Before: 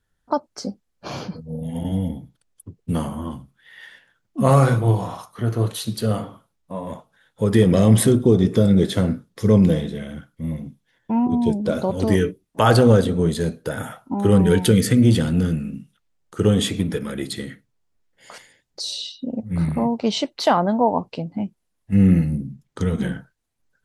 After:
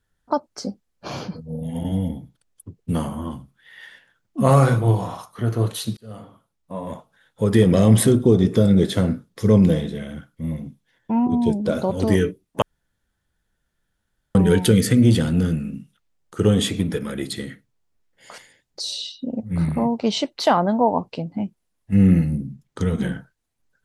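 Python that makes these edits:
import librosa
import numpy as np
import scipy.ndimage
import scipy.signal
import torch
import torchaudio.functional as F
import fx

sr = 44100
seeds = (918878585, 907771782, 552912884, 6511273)

y = fx.edit(x, sr, fx.fade_in_span(start_s=5.97, length_s=0.87),
    fx.room_tone_fill(start_s=12.62, length_s=1.73), tone=tone)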